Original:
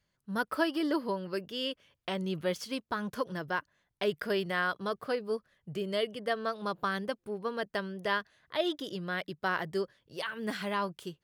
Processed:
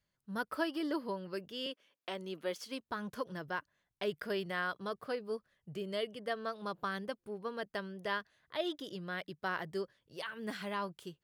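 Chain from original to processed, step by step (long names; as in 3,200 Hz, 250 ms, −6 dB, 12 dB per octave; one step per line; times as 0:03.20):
0:01.66–0:02.81: high-pass filter 230 Hz 24 dB per octave
level −5.5 dB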